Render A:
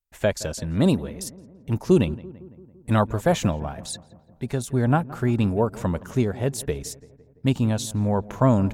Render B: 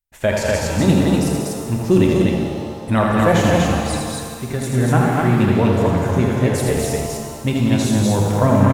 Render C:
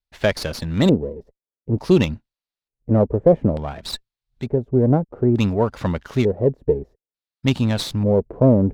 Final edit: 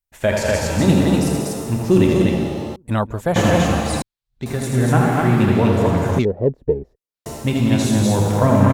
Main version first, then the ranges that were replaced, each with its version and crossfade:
B
0:02.76–0:03.36: punch in from A
0:04.02–0:04.46: punch in from C
0:06.19–0:07.26: punch in from C

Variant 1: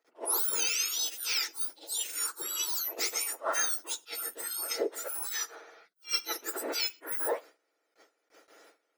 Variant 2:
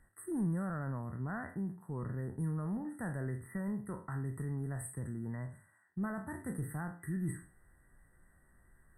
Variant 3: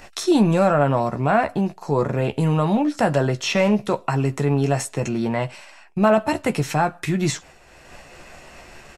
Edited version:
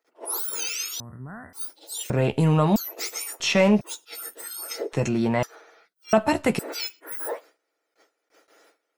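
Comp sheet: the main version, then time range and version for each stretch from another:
1
0:01.00–0:01.53: punch in from 2
0:02.10–0:02.76: punch in from 3
0:03.40–0:03.81: punch in from 3
0:04.93–0:05.43: punch in from 3
0:06.13–0:06.59: punch in from 3

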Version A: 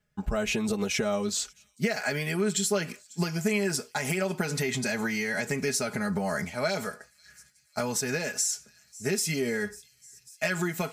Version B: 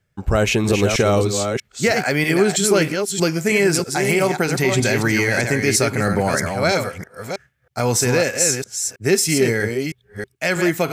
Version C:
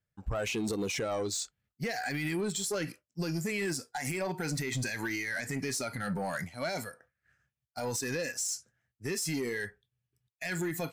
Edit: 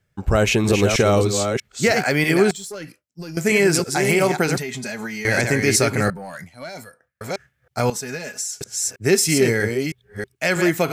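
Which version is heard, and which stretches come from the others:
B
0:02.51–0:03.37: punch in from C
0:04.58–0:05.25: punch in from A
0:06.10–0:07.21: punch in from C
0:07.90–0:08.61: punch in from A

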